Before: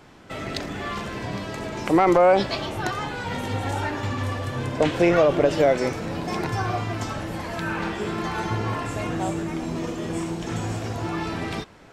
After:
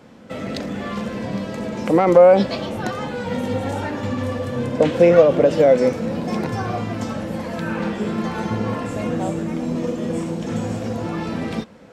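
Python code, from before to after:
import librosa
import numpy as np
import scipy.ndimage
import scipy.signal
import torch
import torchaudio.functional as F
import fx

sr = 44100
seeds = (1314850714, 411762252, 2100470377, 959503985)

y = scipy.signal.sosfilt(scipy.signal.butter(2, 44.0, 'highpass', fs=sr, output='sos'), x)
y = fx.small_body(y, sr, hz=(220.0, 500.0), ring_ms=45, db=13)
y = y * 10.0 ** (-1.5 / 20.0)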